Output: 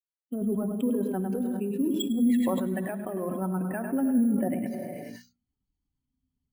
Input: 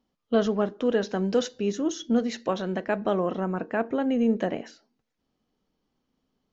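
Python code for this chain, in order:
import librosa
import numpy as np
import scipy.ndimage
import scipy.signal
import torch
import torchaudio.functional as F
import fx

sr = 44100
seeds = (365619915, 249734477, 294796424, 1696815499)

p1 = fx.bin_expand(x, sr, power=2.0)
p2 = fx.env_lowpass_down(p1, sr, base_hz=550.0, full_db=-22.5)
p3 = fx.highpass(p2, sr, hz=100.0, slope=6)
p4 = fx.high_shelf(p3, sr, hz=3100.0, db=-9.0)
p5 = fx.hum_notches(p4, sr, base_hz=60, count=4)
p6 = fx.over_compress(p5, sr, threshold_db=-33.0, ratio=-1.0)
p7 = fx.small_body(p6, sr, hz=(240.0, 3300.0), ring_ms=50, db=13)
p8 = p7 + fx.echo_single(p7, sr, ms=103, db=-9.0, dry=0)
p9 = fx.rev_gated(p8, sr, seeds[0], gate_ms=460, shape='flat', drr_db=10.5)
p10 = np.repeat(scipy.signal.resample_poly(p9, 1, 4), 4)[:len(p9)]
p11 = fx.sustainer(p10, sr, db_per_s=22.0)
y = F.gain(torch.from_numpy(p11), -2.5).numpy()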